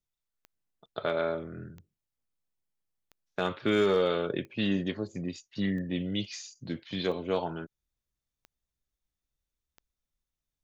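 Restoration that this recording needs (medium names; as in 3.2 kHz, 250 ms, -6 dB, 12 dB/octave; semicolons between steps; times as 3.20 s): clip repair -17 dBFS; de-click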